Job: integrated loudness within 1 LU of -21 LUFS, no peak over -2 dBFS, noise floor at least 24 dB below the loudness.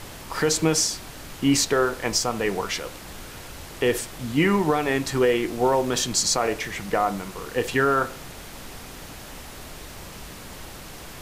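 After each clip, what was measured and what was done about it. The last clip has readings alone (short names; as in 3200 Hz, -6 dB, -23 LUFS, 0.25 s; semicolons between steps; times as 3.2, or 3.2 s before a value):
noise floor -41 dBFS; noise floor target -48 dBFS; loudness -23.5 LUFS; peak -8.5 dBFS; loudness target -21.0 LUFS
-> noise print and reduce 7 dB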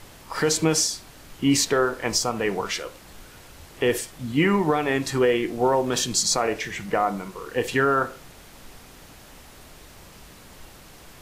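noise floor -48 dBFS; loudness -23.5 LUFS; peak -8.5 dBFS; loudness target -21.0 LUFS
-> gain +2.5 dB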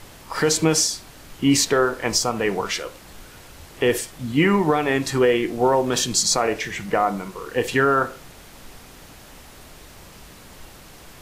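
loudness -21.0 LUFS; peak -6.0 dBFS; noise floor -45 dBFS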